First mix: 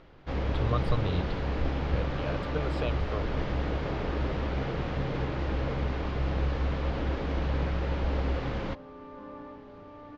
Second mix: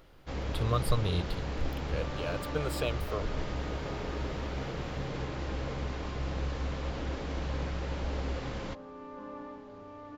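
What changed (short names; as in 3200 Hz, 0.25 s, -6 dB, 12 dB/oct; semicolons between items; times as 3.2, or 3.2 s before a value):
first sound -5.5 dB; master: remove air absorption 180 m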